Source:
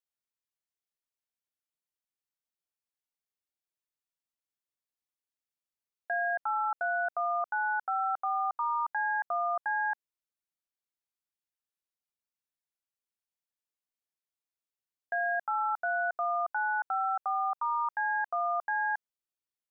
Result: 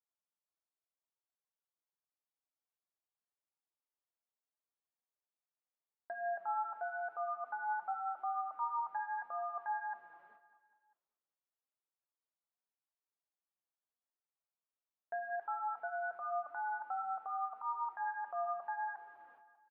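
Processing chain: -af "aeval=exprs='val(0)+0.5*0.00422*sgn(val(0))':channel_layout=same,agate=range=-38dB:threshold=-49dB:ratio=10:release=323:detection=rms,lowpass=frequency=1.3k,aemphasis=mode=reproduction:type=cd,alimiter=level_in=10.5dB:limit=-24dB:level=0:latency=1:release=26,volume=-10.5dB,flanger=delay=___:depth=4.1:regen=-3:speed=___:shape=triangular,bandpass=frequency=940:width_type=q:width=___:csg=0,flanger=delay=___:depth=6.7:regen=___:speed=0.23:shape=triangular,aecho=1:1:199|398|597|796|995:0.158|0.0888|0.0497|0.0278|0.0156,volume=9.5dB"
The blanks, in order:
2.1, 0.84, 0.81, 4, 77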